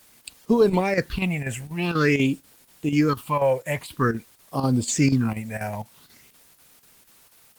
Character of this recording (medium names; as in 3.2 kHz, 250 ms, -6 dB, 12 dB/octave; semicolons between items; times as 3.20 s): phasing stages 6, 0.49 Hz, lowest notch 300–2100 Hz; a quantiser's noise floor 10-bit, dither triangular; chopped level 4.1 Hz, depth 60%, duty 85%; Opus